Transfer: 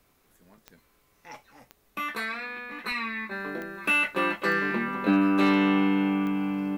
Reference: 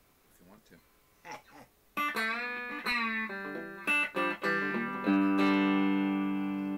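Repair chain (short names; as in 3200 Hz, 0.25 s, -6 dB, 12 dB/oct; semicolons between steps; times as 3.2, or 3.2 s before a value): de-click; gain 0 dB, from 3.31 s -5 dB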